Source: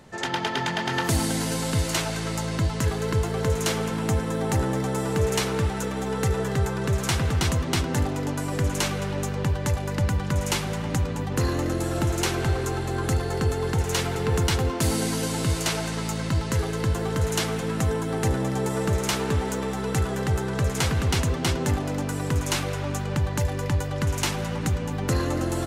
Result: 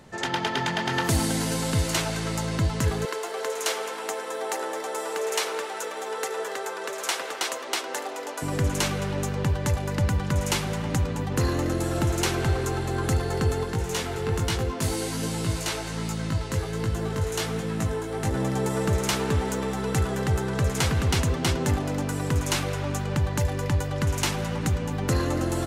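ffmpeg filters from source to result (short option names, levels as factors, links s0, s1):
-filter_complex "[0:a]asettb=1/sr,asplit=3[s0][s1][s2];[s0]atrim=end=3.054[s3];[s1]atrim=start=3.05:end=8.42,asetpts=PTS-STARTPTS,afade=t=in:d=0.004:c=qsin,afade=t=out:st=5.366:d=0.004:c=qsin,highpass=f=430:w=0.5412,highpass=f=430:w=1.3066[s4];[s2]atrim=start=8.416[s5];[s3][s4]acrossfade=d=0.004:c1=hsin:c2=qsin[s6];[s6][s5]acrossfade=d=0.004:c1=qsin:c2=hsin,asplit=3[s7][s8][s9];[s7]afade=t=out:st=13.63:d=0.02[s10];[s8]flanger=delay=17.5:depth=3.4:speed=1.3,afade=t=in:st=13.63:d=0.02,afade=t=out:st=18.34:d=0.02[s11];[s9]afade=t=in:st=18.34:d=0.02[s12];[s10][s11][s12]amix=inputs=3:normalize=0"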